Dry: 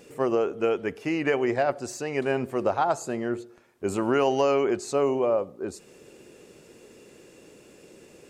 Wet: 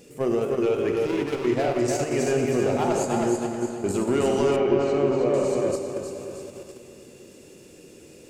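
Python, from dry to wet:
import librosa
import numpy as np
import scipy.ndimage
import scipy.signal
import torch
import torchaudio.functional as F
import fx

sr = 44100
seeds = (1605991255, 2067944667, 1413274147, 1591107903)

p1 = 10.0 ** (-16.5 / 20.0) * np.tanh(x / 10.0 ** (-16.5 / 20.0))
p2 = fx.peak_eq(p1, sr, hz=1200.0, db=-9.0, octaves=2.4)
p3 = fx.overload_stage(p2, sr, gain_db=31.5, at=(1.01, 1.45))
p4 = p3 + fx.echo_feedback(p3, sr, ms=317, feedback_pct=46, wet_db=-3.5, dry=0)
p5 = fx.rev_plate(p4, sr, seeds[0], rt60_s=2.4, hf_ratio=0.9, predelay_ms=0, drr_db=2.0)
p6 = fx.level_steps(p5, sr, step_db=15)
p7 = p5 + F.gain(torch.from_numpy(p6), -0.5).numpy()
y = fx.lowpass(p7, sr, hz=2800.0, slope=12, at=(4.56, 5.34))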